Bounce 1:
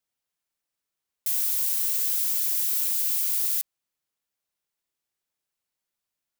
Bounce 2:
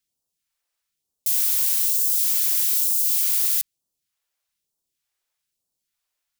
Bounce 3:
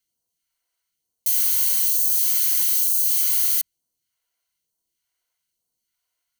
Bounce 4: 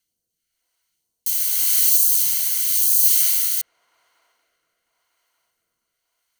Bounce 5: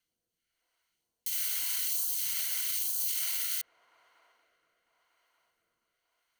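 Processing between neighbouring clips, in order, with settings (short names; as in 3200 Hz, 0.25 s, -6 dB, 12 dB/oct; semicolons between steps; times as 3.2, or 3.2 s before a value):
phaser stages 2, 1.1 Hz, lowest notch 140–2000 Hz; gain +5 dB
ripple EQ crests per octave 1.9, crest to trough 9 dB
band-limited delay 0.237 s, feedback 82%, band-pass 550 Hz, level -16 dB; rotary speaker horn 0.9 Hz; gain +6.5 dB
tone controls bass -4 dB, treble -10 dB; limiter -21.5 dBFS, peak gain reduction 9.5 dB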